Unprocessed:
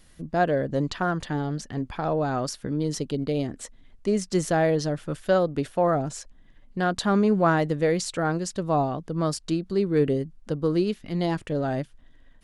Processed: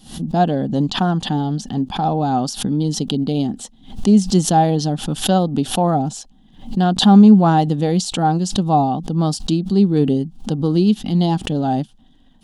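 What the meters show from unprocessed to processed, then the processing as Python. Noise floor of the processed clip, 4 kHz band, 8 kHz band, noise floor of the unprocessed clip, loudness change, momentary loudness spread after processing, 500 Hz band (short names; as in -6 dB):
-50 dBFS, +12.5 dB, +8.5 dB, -54 dBFS, +8.5 dB, 9 LU, +2.0 dB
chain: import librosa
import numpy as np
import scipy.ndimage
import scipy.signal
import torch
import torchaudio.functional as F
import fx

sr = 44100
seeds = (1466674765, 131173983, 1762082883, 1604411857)

y = fx.high_shelf_res(x, sr, hz=2600.0, db=6.5, q=3.0)
y = fx.small_body(y, sr, hz=(210.0, 780.0), ring_ms=30, db=17)
y = fx.pre_swell(y, sr, db_per_s=130.0)
y = F.gain(torch.from_numpy(y), -2.0).numpy()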